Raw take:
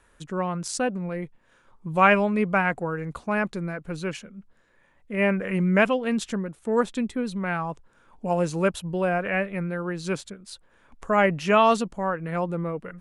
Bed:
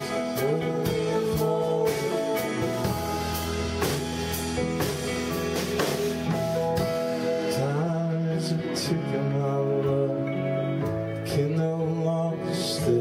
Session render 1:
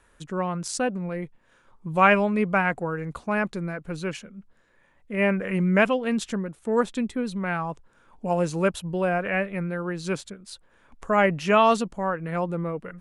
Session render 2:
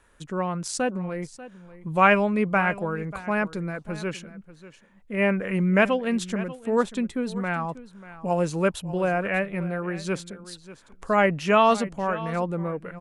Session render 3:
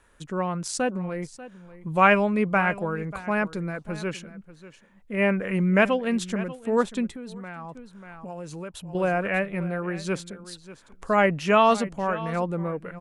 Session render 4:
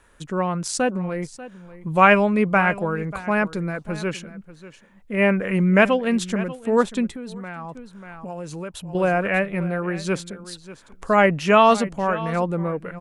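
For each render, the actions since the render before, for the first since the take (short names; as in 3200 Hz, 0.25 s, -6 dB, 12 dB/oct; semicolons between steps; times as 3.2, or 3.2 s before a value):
nothing audible
echo 0.59 s -16.5 dB
7.08–8.95 compressor 4:1, threshold -36 dBFS
gain +4 dB; limiter -1 dBFS, peak gain reduction 1.5 dB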